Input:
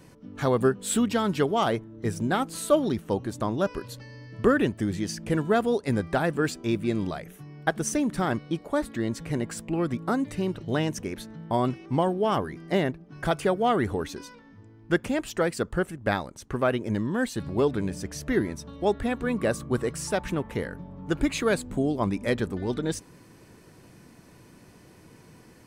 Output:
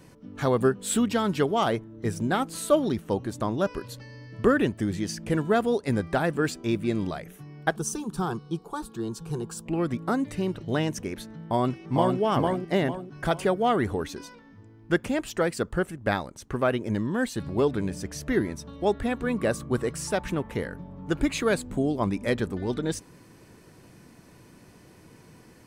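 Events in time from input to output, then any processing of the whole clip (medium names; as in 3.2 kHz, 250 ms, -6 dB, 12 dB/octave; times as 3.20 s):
7.76–9.66 s: static phaser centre 400 Hz, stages 8
11.40–12.19 s: echo throw 450 ms, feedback 35%, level -2.5 dB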